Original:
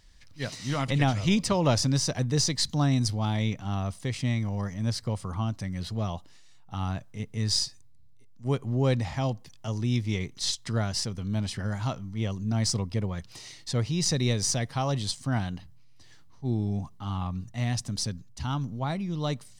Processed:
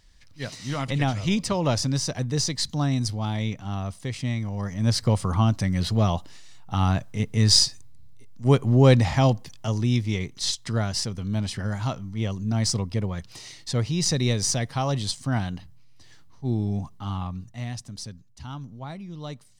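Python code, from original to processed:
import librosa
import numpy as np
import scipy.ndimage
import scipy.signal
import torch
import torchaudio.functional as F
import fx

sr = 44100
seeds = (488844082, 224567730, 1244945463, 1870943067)

y = fx.gain(x, sr, db=fx.line((4.54, 0.0), (5.02, 9.0), (9.27, 9.0), (10.13, 2.5), (17.06, 2.5), (17.87, -6.5)))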